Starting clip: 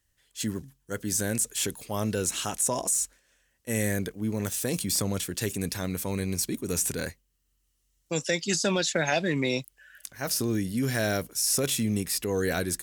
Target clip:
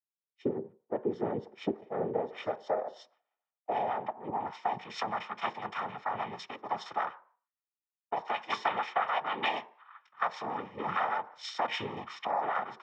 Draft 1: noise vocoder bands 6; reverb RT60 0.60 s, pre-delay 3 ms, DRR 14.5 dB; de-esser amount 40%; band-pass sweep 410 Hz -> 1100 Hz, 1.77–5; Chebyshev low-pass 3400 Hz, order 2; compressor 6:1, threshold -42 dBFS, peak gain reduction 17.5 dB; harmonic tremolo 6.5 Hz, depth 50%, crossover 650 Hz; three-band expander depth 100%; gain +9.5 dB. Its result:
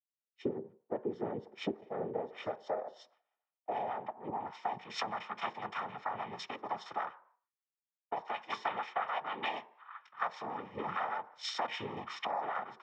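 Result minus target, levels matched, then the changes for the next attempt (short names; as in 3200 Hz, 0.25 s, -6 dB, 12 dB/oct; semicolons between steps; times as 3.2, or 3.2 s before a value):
compressor: peak gain reduction +5 dB
change: compressor 6:1, threshold -36 dBFS, peak gain reduction 12.5 dB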